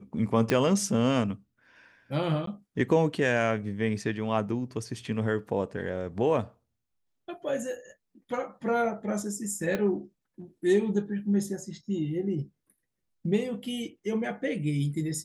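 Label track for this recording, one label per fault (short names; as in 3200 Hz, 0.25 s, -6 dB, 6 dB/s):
0.500000	0.500000	pop -11 dBFS
2.460000	2.470000	gap 13 ms
9.750000	9.750000	pop -16 dBFS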